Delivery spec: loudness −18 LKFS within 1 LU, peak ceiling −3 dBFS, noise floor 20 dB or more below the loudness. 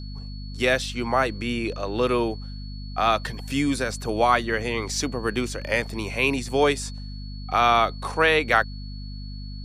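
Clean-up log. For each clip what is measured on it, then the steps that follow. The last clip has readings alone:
mains hum 50 Hz; hum harmonics up to 250 Hz; level of the hum −33 dBFS; interfering tone 4,400 Hz; level of the tone −45 dBFS; integrated loudness −23.5 LKFS; sample peak −5.5 dBFS; target loudness −18.0 LKFS
→ hum removal 50 Hz, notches 5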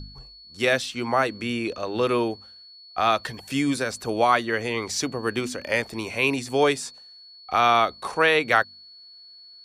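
mains hum none found; interfering tone 4,400 Hz; level of the tone −45 dBFS
→ notch filter 4,400 Hz, Q 30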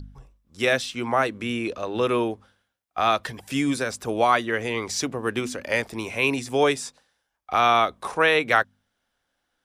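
interfering tone none found; integrated loudness −24.0 LKFS; sample peak −5.5 dBFS; target loudness −18.0 LKFS
→ level +6 dB
brickwall limiter −3 dBFS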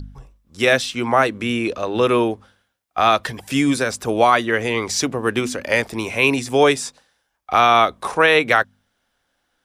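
integrated loudness −18.5 LKFS; sample peak −3.0 dBFS; background noise floor −71 dBFS

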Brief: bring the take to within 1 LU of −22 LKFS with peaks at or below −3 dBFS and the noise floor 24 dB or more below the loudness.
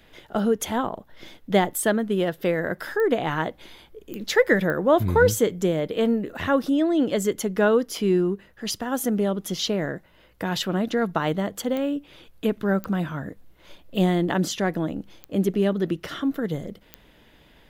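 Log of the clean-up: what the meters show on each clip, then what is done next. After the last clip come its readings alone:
number of clicks 7; integrated loudness −24.0 LKFS; sample peak −6.5 dBFS; target loudness −22.0 LKFS
→ click removal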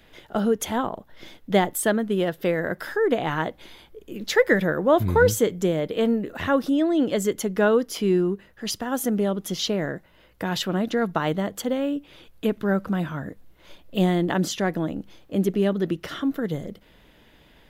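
number of clicks 0; integrated loudness −24.0 LKFS; sample peak −6.5 dBFS; target loudness −22.0 LKFS
→ level +2 dB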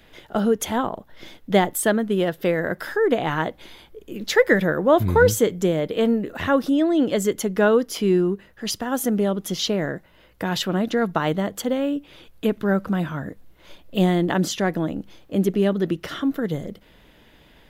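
integrated loudness −22.0 LKFS; sample peak −4.5 dBFS; background noise floor −53 dBFS

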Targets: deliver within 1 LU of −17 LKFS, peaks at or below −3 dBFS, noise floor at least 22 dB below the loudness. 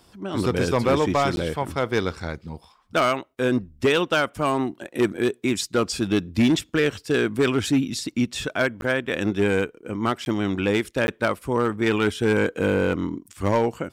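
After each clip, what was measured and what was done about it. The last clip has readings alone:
share of clipped samples 1.0%; peaks flattened at −13.5 dBFS; number of dropouts 4; longest dropout 11 ms; integrated loudness −23.5 LKFS; sample peak −13.5 dBFS; target loudness −17.0 LKFS
→ clipped peaks rebuilt −13.5 dBFS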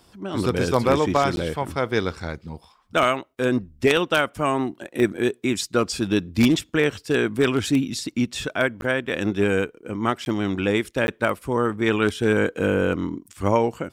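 share of clipped samples 0.0%; number of dropouts 4; longest dropout 11 ms
→ repair the gap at 0:01.36/0:08.81/0:10.25/0:11.07, 11 ms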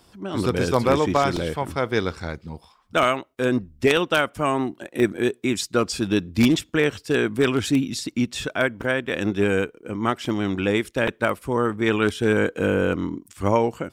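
number of dropouts 0; integrated loudness −23.0 LKFS; sample peak −4.5 dBFS; target loudness −17.0 LKFS
→ level +6 dB
brickwall limiter −3 dBFS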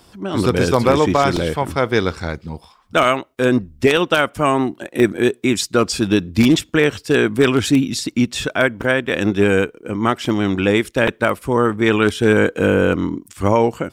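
integrated loudness −17.5 LKFS; sample peak −3.0 dBFS; background noise floor −52 dBFS

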